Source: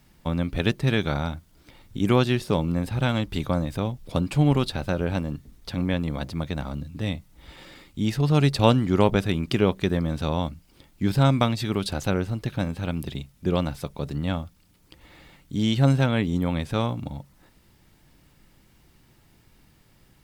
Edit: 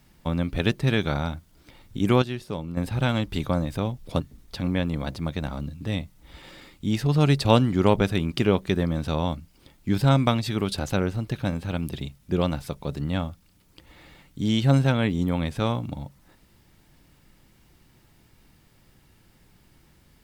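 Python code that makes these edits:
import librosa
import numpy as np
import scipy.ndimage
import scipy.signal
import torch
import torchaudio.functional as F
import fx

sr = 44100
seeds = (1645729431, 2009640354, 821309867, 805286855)

y = fx.edit(x, sr, fx.clip_gain(start_s=2.22, length_s=0.55, db=-8.5),
    fx.cut(start_s=4.2, length_s=1.14), tone=tone)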